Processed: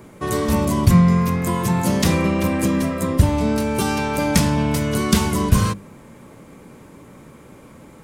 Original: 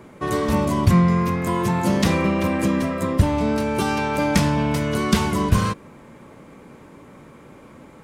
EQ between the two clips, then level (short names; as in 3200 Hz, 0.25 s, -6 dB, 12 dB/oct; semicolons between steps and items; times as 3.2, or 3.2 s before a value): low shelf 320 Hz +6 dB; high shelf 5400 Hz +11 dB; notches 50/100/150/200/250/300/350 Hz; -1.5 dB